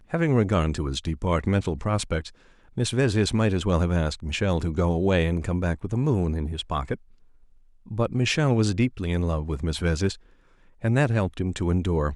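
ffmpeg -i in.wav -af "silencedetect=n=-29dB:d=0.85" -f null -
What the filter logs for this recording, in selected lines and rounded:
silence_start: 6.95
silence_end: 7.91 | silence_duration: 0.97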